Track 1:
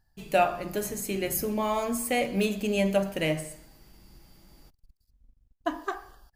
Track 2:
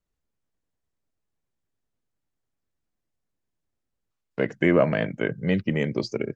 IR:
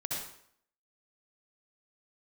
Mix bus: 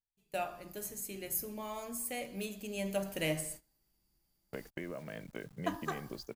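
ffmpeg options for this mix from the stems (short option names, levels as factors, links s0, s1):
-filter_complex "[0:a]volume=0.473,afade=t=in:st=2.72:d=0.59:silence=0.398107[s0];[1:a]acompressor=threshold=0.0398:ratio=8,aeval=exprs='val(0)*gte(abs(val(0)),0.00398)':c=same,adelay=150,volume=0.282[s1];[s0][s1]amix=inputs=2:normalize=0,agate=range=0.112:threshold=0.00282:ratio=16:detection=peak,highshelf=f=5700:g=11.5"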